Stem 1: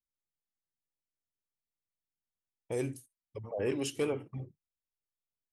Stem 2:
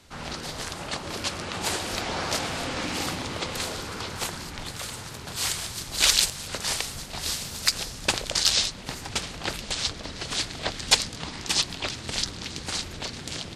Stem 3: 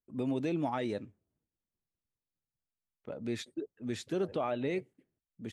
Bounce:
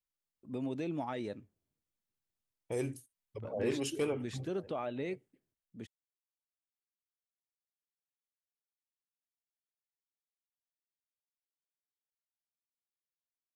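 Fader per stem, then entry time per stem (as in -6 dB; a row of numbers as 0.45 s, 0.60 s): -1.5 dB, mute, -4.5 dB; 0.00 s, mute, 0.35 s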